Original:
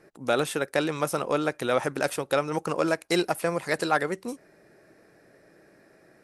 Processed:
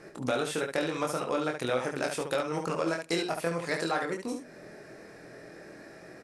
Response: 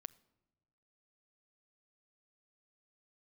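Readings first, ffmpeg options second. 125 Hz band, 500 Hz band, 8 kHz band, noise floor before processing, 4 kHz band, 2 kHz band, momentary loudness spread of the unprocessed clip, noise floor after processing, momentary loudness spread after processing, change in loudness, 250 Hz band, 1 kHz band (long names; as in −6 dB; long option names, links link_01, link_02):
−3.5 dB, −4.0 dB, −3.5 dB, −59 dBFS, −3.0 dB, −4.0 dB, 4 LU, −50 dBFS, 18 LU, −4.0 dB, −3.5 dB, −4.5 dB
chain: -filter_complex "[0:a]acompressor=threshold=-42dB:ratio=2.5,aecho=1:1:24|72:0.668|0.501,asplit=2[link_01][link_02];[1:a]atrim=start_sample=2205,lowpass=8000,highshelf=frequency=5100:gain=8[link_03];[link_02][link_03]afir=irnorm=-1:irlink=0,volume=8dB[link_04];[link_01][link_04]amix=inputs=2:normalize=0,volume=-1dB"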